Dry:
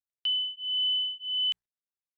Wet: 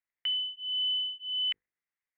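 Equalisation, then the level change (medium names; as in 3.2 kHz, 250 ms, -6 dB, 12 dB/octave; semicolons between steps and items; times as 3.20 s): resonant low-pass 2 kHz, resonance Q 5.4; hum notches 50/100/150/200/250/300/350/400/450/500 Hz; hum notches 50/100/150/200/250/300/350/400/450 Hz; 0.0 dB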